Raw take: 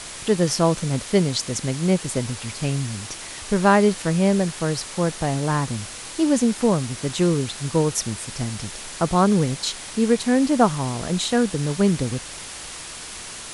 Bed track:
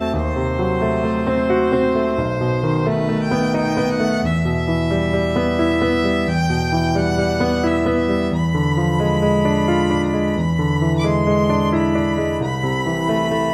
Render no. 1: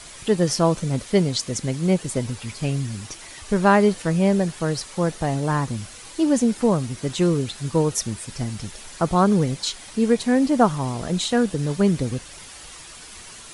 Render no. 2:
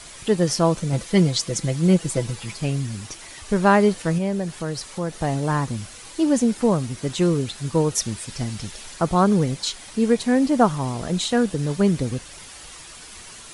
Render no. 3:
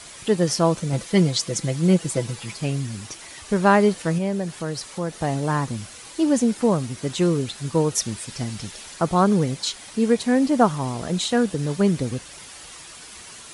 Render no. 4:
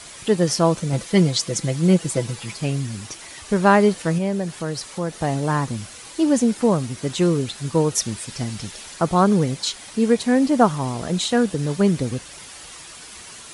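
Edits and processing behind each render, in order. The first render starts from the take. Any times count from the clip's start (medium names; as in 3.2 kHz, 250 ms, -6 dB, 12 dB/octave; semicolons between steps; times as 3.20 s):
noise reduction 8 dB, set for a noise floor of -36 dBFS
0.92–2.57 s: comb 6 ms; 4.18–5.16 s: compression 1.5:1, threshold -29 dBFS; 7.95–8.94 s: peaking EQ 3.9 kHz +3 dB 1.8 oct
high-pass 82 Hz 6 dB/octave
trim +1.5 dB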